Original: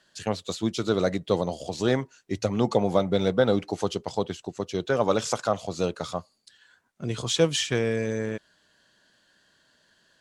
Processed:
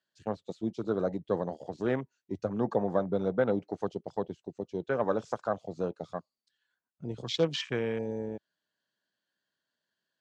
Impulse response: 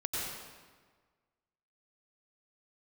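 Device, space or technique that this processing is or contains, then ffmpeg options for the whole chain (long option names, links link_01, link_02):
over-cleaned archive recording: -af "highpass=120,lowpass=7100,afwtdn=0.0251,volume=-5.5dB"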